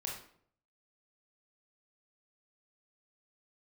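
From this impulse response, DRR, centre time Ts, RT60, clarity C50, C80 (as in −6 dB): −2.0 dB, 37 ms, 0.60 s, 4.0 dB, 8.5 dB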